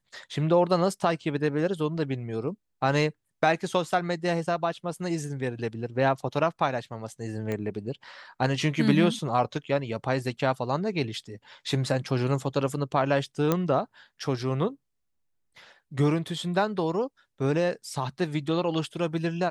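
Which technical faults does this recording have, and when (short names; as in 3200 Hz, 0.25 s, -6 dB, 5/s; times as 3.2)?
7.52 pop -19 dBFS
13.52 pop -10 dBFS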